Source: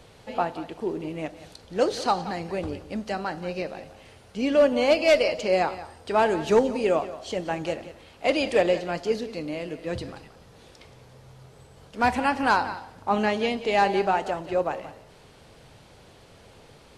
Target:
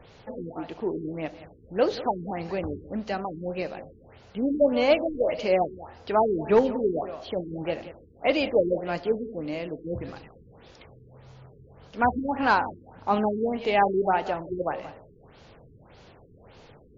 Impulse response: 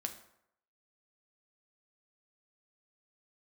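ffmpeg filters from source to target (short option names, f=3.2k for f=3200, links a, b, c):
-filter_complex "[0:a]acrossover=split=5200[a][b];[b]acompressor=threshold=-55dB:ratio=4:attack=1:release=60[c];[a][c]amix=inputs=2:normalize=0,afftfilt=real='re*lt(b*sr/1024,450*pow(7400/450,0.5+0.5*sin(2*PI*1.7*pts/sr)))':imag='im*lt(b*sr/1024,450*pow(7400/450,0.5+0.5*sin(2*PI*1.7*pts/sr)))':win_size=1024:overlap=0.75"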